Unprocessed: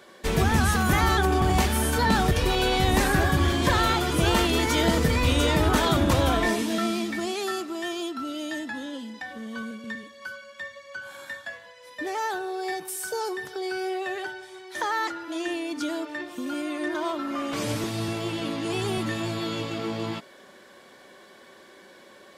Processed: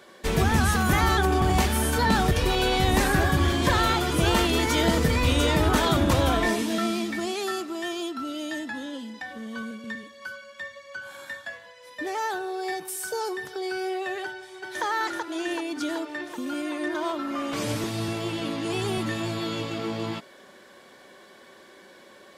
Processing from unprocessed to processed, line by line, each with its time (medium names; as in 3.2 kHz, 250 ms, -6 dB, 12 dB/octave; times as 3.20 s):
14.24–14.84 s: echo throw 380 ms, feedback 70%, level -3.5 dB